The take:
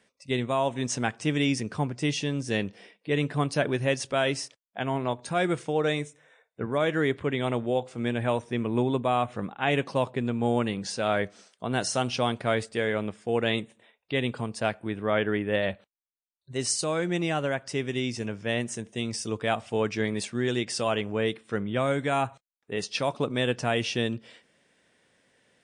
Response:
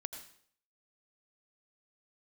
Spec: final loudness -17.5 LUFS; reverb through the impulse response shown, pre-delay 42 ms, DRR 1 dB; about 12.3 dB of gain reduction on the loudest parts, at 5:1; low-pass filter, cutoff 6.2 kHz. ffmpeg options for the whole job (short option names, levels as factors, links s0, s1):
-filter_complex "[0:a]lowpass=6200,acompressor=threshold=0.0178:ratio=5,asplit=2[s0][s1];[1:a]atrim=start_sample=2205,adelay=42[s2];[s1][s2]afir=irnorm=-1:irlink=0,volume=1.12[s3];[s0][s3]amix=inputs=2:normalize=0,volume=8.41"